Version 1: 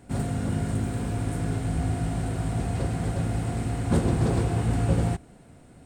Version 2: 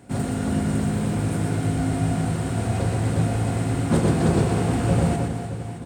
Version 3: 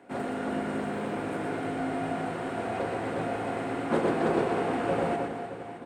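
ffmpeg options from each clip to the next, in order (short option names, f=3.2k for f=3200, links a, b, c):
-filter_complex "[0:a]highpass=89,asplit=2[a][b];[b]aecho=0:1:120|312|619.2|1111|1897:0.631|0.398|0.251|0.158|0.1[c];[a][c]amix=inputs=2:normalize=0,volume=3.5dB"
-filter_complex "[0:a]acrossover=split=280 3000:gain=0.0631 1 0.141[a][b][c];[a][b][c]amix=inputs=3:normalize=0"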